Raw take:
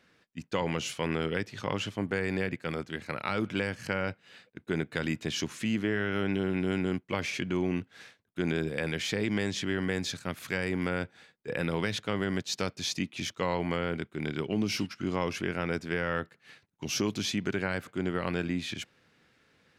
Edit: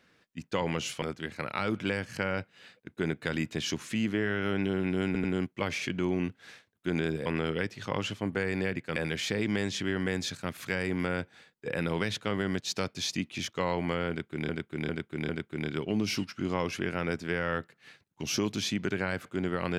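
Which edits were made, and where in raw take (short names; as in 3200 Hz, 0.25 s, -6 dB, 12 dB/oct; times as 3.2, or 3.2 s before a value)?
1.02–2.72 move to 8.78
6.76 stutter 0.09 s, 3 plays
13.91–14.31 loop, 4 plays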